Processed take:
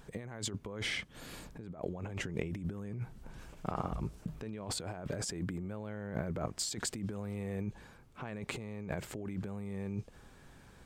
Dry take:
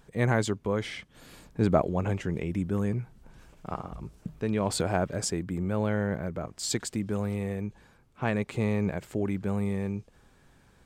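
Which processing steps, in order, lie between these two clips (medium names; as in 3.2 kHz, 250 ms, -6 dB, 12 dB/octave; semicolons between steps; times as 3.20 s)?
compressor with a negative ratio -36 dBFS, ratio -1; trim -3.5 dB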